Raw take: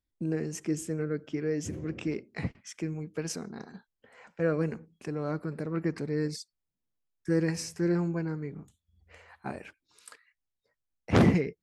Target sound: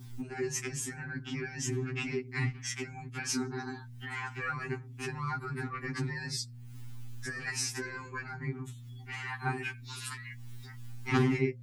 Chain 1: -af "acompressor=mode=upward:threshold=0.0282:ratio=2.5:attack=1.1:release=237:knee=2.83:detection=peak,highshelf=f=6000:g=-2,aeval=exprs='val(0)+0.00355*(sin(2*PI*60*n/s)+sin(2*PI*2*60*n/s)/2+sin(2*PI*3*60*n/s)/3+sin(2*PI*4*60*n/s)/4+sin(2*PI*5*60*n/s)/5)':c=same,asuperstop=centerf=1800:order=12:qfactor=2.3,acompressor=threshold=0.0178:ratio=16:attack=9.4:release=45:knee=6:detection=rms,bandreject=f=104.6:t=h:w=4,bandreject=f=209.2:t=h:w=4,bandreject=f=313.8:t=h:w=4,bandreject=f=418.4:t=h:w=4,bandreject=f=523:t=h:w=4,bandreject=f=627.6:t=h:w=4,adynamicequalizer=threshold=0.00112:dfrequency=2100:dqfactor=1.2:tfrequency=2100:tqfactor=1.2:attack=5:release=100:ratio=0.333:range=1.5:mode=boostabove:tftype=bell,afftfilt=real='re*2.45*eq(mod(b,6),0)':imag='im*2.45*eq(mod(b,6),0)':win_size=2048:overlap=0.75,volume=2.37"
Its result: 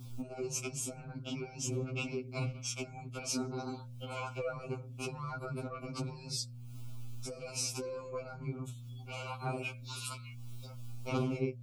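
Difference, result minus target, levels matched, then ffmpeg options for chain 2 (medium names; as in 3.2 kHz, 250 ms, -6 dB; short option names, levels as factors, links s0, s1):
compression: peak gain reduction +7 dB; 2 kHz band -6.0 dB
-af "acompressor=mode=upward:threshold=0.0282:ratio=2.5:attack=1.1:release=237:knee=2.83:detection=peak,highshelf=f=6000:g=-2,aeval=exprs='val(0)+0.00355*(sin(2*PI*60*n/s)+sin(2*PI*2*60*n/s)/2+sin(2*PI*3*60*n/s)/3+sin(2*PI*4*60*n/s)/4+sin(2*PI*5*60*n/s)/5)':c=same,asuperstop=centerf=580:order=12:qfactor=2.3,acompressor=threshold=0.0398:ratio=16:attack=9.4:release=45:knee=6:detection=rms,bandreject=f=104.6:t=h:w=4,bandreject=f=209.2:t=h:w=4,bandreject=f=313.8:t=h:w=4,bandreject=f=418.4:t=h:w=4,bandreject=f=523:t=h:w=4,bandreject=f=627.6:t=h:w=4,adynamicequalizer=threshold=0.00112:dfrequency=2100:dqfactor=1.2:tfrequency=2100:tqfactor=1.2:attack=5:release=100:ratio=0.333:range=1.5:mode=boostabove:tftype=bell,afftfilt=real='re*2.45*eq(mod(b,6),0)':imag='im*2.45*eq(mod(b,6),0)':win_size=2048:overlap=0.75,volume=2.37"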